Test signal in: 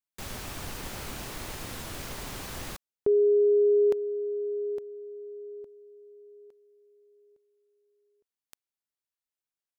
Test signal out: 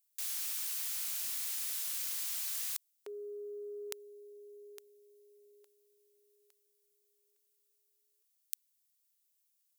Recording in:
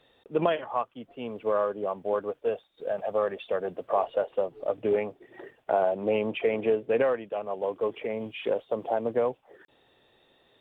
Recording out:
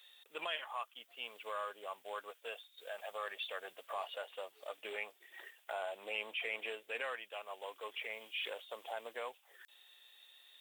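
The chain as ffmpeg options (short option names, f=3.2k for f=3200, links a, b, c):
-af "highpass=f=1.3k:p=1,aderivative,areverse,acompressor=threshold=-52dB:ratio=6:attack=10:release=24:knee=6:detection=peak,areverse,volume=13dB"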